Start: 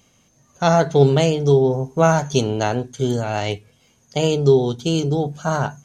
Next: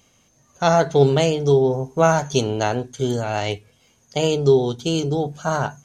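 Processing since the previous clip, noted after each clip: peaking EQ 170 Hz -3.5 dB 1.4 oct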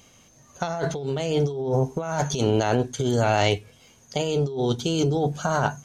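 compressor with a negative ratio -24 dBFS, ratio -1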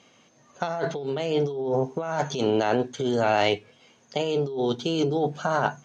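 band-pass 200–4200 Hz

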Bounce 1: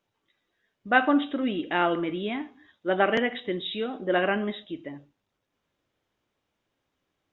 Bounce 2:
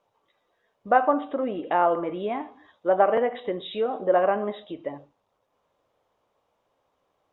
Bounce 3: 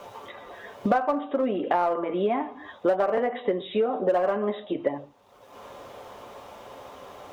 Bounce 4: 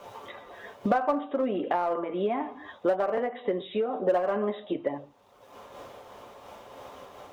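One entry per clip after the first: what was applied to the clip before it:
compression 1.5:1, threshold -35 dBFS, peak gain reduction 8 dB; low-pass that closes with the level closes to 1.9 kHz, closed at -28 dBFS; high-order bell 730 Hz +11.5 dB
comb of notches 160 Hz; in parallel at -6 dB: hard clipper -21.5 dBFS, distortion -8 dB; on the sum: three bands compressed up and down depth 100%; trim -3.5 dB
random flutter of the level, depth 55%

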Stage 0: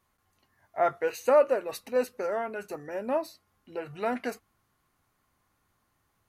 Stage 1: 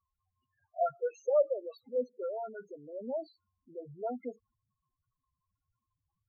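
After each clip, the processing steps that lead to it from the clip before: tremolo 4.9 Hz, depth 32%; loudest bins only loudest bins 4; trim -3.5 dB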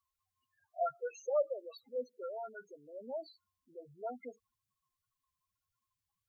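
tilt shelf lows -8 dB, about 790 Hz; trim -3 dB

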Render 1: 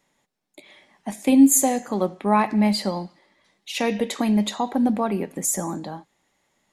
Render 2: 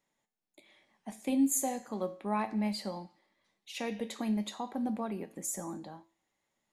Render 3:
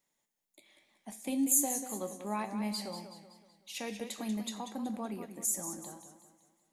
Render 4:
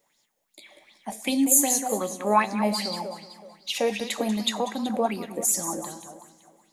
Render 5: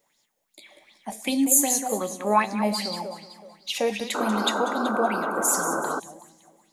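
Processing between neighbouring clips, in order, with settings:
feedback comb 110 Hz, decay 0.37 s, harmonics all, mix 60%; trim -7 dB
treble shelf 5.2 kHz +12 dB; modulated delay 188 ms, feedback 45%, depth 101 cents, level -10 dB; trim -4 dB
filtered feedback delay 287 ms, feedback 54%, low-pass 4.9 kHz, level -24 dB; sweeping bell 2.6 Hz 480–5200 Hz +15 dB; trim +8 dB
painted sound noise, 4.14–6.00 s, 230–1600 Hz -28 dBFS

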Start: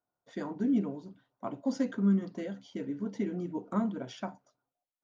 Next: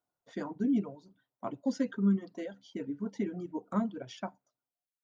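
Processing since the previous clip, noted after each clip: reverb removal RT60 1.6 s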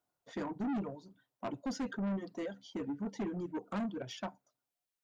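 saturation -35 dBFS, distortion -6 dB; trim +2.5 dB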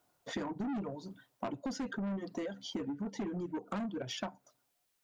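compression 12:1, threshold -47 dBFS, peak gain reduction 13 dB; trim +11.5 dB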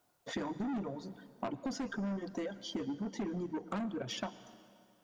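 reverberation RT60 2.5 s, pre-delay 103 ms, DRR 15.5 dB

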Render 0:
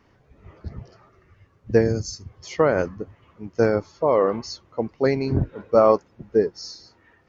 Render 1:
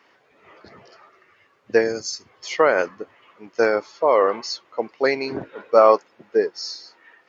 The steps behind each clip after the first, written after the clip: high-pass 400 Hz 12 dB/octave; peaking EQ 2.6 kHz +6.5 dB 2.4 oct; band-stop 5.9 kHz, Q 22; trim +2 dB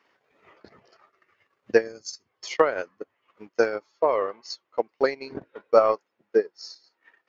transient shaper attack +9 dB, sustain -11 dB; trim -9 dB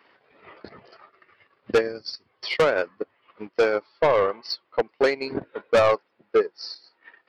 resampled via 11.025 kHz; saturation -21.5 dBFS, distortion -6 dB; trim +8 dB

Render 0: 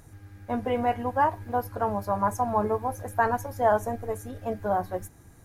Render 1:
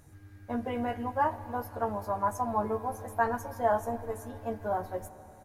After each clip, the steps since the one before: doubling 13 ms -5 dB; on a send at -14.5 dB: reverberation RT60 3.8 s, pre-delay 46 ms; on the sum: trim -6 dB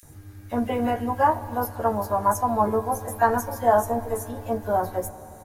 treble shelf 7 kHz +8.5 dB; bands offset in time highs, lows 30 ms, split 2 kHz; trim +8 dB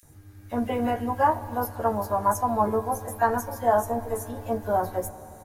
level rider gain up to 4.5 dB; trim -5.5 dB

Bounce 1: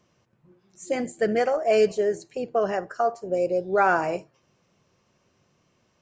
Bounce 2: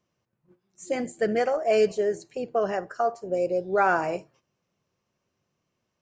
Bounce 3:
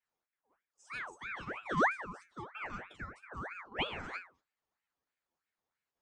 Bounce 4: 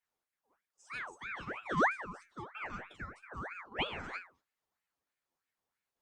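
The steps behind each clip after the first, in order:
gate -55 dBFS, range -10 dB; trim -1.5 dB
level held to a coarse grid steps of 10 dB; inharmonic resonator 84 Hz, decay 0.32 s, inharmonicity 0.002; ring modulator with a swept carrier 1.3 kHz, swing 55%, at 3.1 Hz
Opus 64 kbps 48 kHz

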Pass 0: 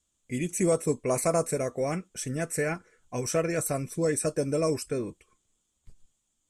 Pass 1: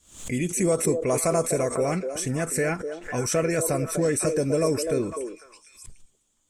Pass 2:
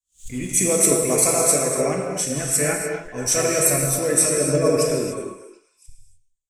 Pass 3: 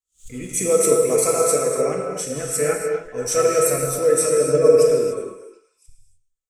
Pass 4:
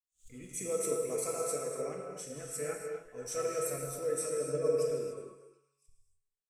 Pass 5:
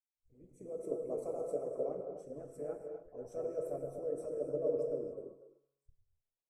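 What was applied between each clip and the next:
in parallel at +2 dB: peak limiter -25 dBFS, peak gain reduction 11 dB; on the sum: repeats whose band climbs or falls 250 ms, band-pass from 440 Hz, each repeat 1.4 oct, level -5 dB; swell ahead of each attack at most 120 dB/s; trim -1.5 dB
treble shelf 2.6 kHz +8.5 dB; gated-style reverb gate 330 ms flat, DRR -1.5 dB; three bands expanded up and down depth 100%; trim -1 dB
small resonant body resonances 470/1300 Hz, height 14 dB, ringing for 55 ms; trim -4.5 dB
feedback comb 140 Hz, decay 1.2 s, harmonics all, mix 60%; trim -9 dB
fade-in on the opening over 1.23 s; FFT filter 130 Hz 0 dB, 210 Hz -5 dB, 610 Hz +4 dB, 2 kHz -28 dB; harmonic-percussive split harmonic -13 dB; trim +5 dB

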